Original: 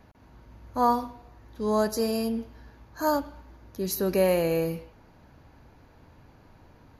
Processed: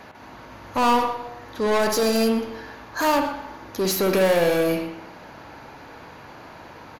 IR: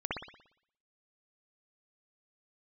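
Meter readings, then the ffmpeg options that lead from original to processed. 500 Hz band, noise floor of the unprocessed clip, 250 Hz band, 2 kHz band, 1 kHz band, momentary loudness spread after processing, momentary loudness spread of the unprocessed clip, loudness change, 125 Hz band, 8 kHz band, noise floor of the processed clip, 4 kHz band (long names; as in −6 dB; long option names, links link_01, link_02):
+5.5 dB, −56 dBFS, +4.5 dB, +11.5 dB, +5.5 dB, 16 LU, 17 LU, +5.0 dB, +2.0 dB, +7.5 dB, −44 dBFS, +10.0 dB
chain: -filter_complex "[0:a]asplit=2[link_01][link_02];[link_02]highpass=frequency=720:poles=1,volume=27dB,asoftclip=type=tanh:threshold=-11dB[link_03];[link_01][link_03]amix=inputs=2:normalize=0,lowpass=frequency=5600:poles=1,volume=-6dB,asplit=2[link_04][link_05];[link_05]adelay=122.4,volume=-14dB,highshelf=frequency=4000:gain=-2.76[link_06];[link_04][link_06]amix=inputs=2:normalize=0,asplit=2[link_07][link_08];[1:a]atrim=start_sample=2205[link_09];[link_08][link_09]afir=irnorm=-1:irlink=0,volume=-9.5dB[link_10];[link_07][link_10]amix=inputs=2:normalize=0,volume=-4.5dB"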